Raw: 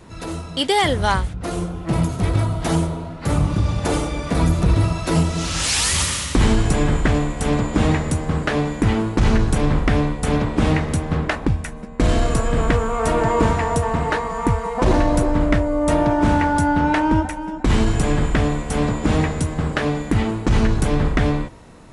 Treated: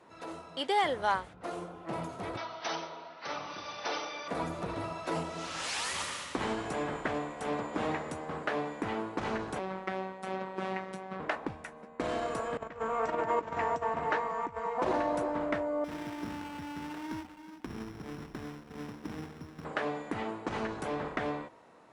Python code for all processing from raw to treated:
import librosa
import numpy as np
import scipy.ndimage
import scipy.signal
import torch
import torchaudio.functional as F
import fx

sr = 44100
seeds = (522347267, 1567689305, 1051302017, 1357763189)

y = fx.chain(x, sr, fx.brickwall_lowpass(high_hz=6200.0),
    fx.tilt_eq(slope=4.5), at=(2.37, 4.28))
y = fx.chain(y, sr, fx.peak_eq(hz=9900.0, db=-5.0, octaves=1.2),
    fx.robotise(hz=189.0), at=(9.59, 11.2))
y = fx.chain(y, sr, fx.low_shelf(hz=240.0, db=7.0),
    fx.over_compress(threshold_db=-16.0, ratio=-0.5),
    fx.cheby_ripple(hz=7800.0, ripple_db=3), at=(12.57, 14.78))
y = fx.chain(y, sr, fx.median_filter(points=41),
    fx.peak_eq(hz=610.0, db=-15.0, octaves=1.1),
    fx.sample_hold(seeds[0], rate_hz=5500.0, jitter_pct=0), at=(15.84, 19.65))
y = scipy.signal.sosfilt(scipy.signal.butter(2, 700.0, 'highpass', fs=sr, output='sos'), y)
y = fx.tilt_eq(y, sr, slope=-4.0)
y = F.gain(torch.from_numpy(y), -7.5).numpy()